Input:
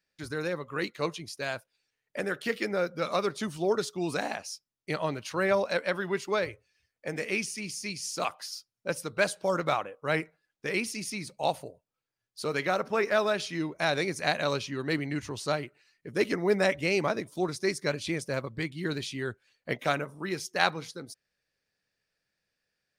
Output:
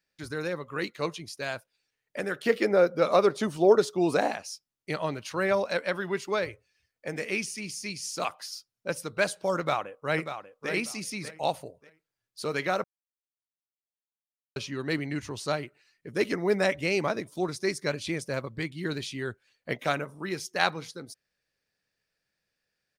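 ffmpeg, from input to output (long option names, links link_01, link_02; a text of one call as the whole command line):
ffmpeg -i in.wav -filter_complex "[0:a]asettb=1/sr,asplit=3[link_01][link_02][link_03];[link_01]atrim=end=2.454[link_04];[link_02]atrim=start=2.45:end=4.31,asetpts=PTS-STARTPTS,afade=type=in:duration=0.004:curve=qsin,afade=type=out:start_time=1.856:duration=0.004:curve=qsin,equalizer=frequency=520:width_type=o:width=2.3:gain=8.5[link_05];[link_03]atrim=start=4.306[link_06];[link_04][link_05]acrossfade=duration=0.004:curve1=hsin:curve2=qsin[link_07];[link_07][link_06]acrossfade=duration=0.004:curve1=qsin:curve2=hsin,asplit=2[link_08][link_09];[link_09]afade=type=in:start_time=9.58:duration=0.01,afade=type=out:start_time=10.71:duration=0.01,aecho=0:1:590|1180|1770:0.354813|0.0709627|0.0141925[link_10];[link_08][link_10]amix=inputs=2:normalize=0,asplit=3[link_11][link_12][link_13];[link_11]atrim=end=12.84,asetpts=PTS-STARTPTS,afade=type=out:start_time=12.836:duration=0.004:curve=hsin[link_14];[link_12]atrim=start=12.84:end=14.56,asetpts=PTS-STARTPTS,volume=0[link_15];[link_13]atrim=start=14.56,asetpts=PTS-STARTPTS,afade=type=in:duration=0.004:curve=hsin[link_16];[link_14][link_15][link_16]concat=n=3:v=0:a=1" out.wav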